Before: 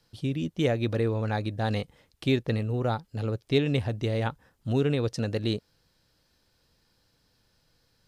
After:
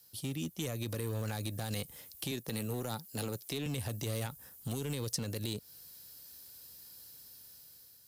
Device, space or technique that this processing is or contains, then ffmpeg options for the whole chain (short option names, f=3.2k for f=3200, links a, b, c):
FM broadcast chain: -filter_complex "[0:a]asettb=1/sr,asplit=3[a][b][c];[a]atrim=end=2.314[d];[b]atrim=start=2.31:end=3.66,asetpts=PTS-STARTPTS,afade=t=in:d=0.004:c=qsin,afade=t=out:st=1.346:d=0.004:c=qsin,highpass=170[e];[c]atrim=start=3.656[f];[d][e]acrossfade=d=0.004:c1=hsin:c2=qsin[g];[g][f]acrossfade=d=0.004:c1=qsin:c2=hsin,highpass=54,dynaudnorm=f=440:g=5:m=8.5dB,acrossover=split=230|4800[h][i][j];[h]acompressor=threshold=-28dB:ratio=4[k];[i]acompressor=threshold=-30dB:ratio=4[l];[j]acompressor=threshold=-47dB:ratio=4[m];[k][l][m]amix=inputs=3:normalize=0,aemphasis=mode=production:type=50fm,alimiter=limit=-20.5dB:level=0:latency=1:release=48,asoftclip=type=hard:threshold=-24.5dB,lowpass=f=15k:w=0.5412,lowpass=f=15k:w=1.3066,aemphasis=mode=production:type=50fm,volume=-6.5dB"